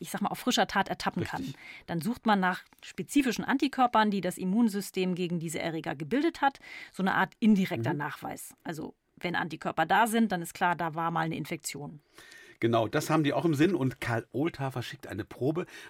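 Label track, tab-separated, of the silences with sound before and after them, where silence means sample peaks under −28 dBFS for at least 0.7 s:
11.700000	12.620000	silence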